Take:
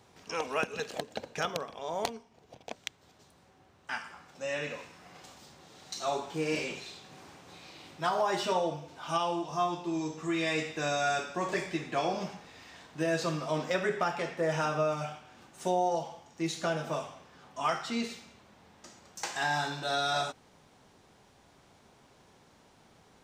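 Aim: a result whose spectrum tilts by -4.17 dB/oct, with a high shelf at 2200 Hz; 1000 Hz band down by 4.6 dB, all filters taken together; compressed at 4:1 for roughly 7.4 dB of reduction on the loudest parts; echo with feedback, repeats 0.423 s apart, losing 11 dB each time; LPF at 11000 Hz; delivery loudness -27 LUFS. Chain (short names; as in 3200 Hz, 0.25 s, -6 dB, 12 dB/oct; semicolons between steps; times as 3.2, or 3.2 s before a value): LPF 11000 Hz; bell 1000 Hz -5 dB; high shelf 2200 Hz -8 dB; compressor 4:1, threshold -36 dBFS; feedback echo 0.423 s, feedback 28%, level -11 dB; gain +14 dB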